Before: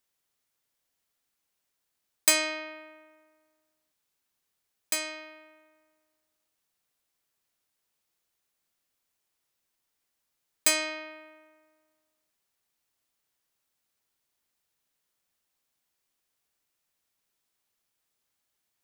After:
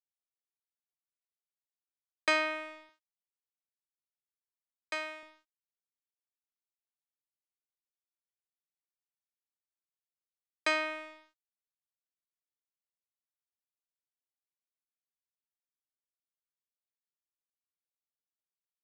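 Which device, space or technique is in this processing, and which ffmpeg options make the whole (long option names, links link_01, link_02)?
pocket radio on a weak battery: -filter_complex "[0:a]highpass=270,lowpass=3600,aeval=exprs='sgn(val(0))*max(abs(val(0))-0.00422,0)':channel_layout=same,equalizer=frequency=1300:width_type=o:width=0.77:gain=6,asettb=1/sr,asplit=3[link_01][link_02][link_03];[link_01]atrim=end=2.894[link_04];[link_02]atrim=start=2.89:end=5.23,asetpts=PTS-STARTPTS,afade=type=in:duration=0.004:curve=qsin,afade=type=out:start_time=2.336:duration=0.004:curve=qsin,highpass=310[link_05];[link_03]atrim=start=5.226[link_06];[link_04][link_05]acrossfade=duration=0.004:curve1=hsin:curve2=qsin[link_07];[link_07][link_06]acrossfade=duration=0.004:curve1=qsin:curve2=hsin,aemphasis=mode=reproduction:type=50fm"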